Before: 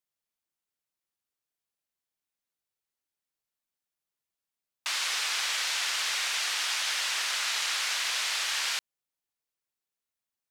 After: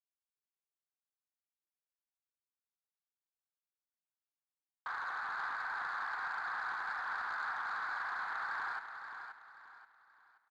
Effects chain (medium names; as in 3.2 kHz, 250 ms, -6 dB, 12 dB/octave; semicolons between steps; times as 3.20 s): elliptic band-pass 750–1600 Hz, stop band 50 dB; waveshaping leveller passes 2; in parallel at -8 dB: bit crusher 8-bit; on the sum: distance through air 73 m; on a send: feedback delay 529 ms, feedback 34%, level -8 dB; on the sum: trim -7 dB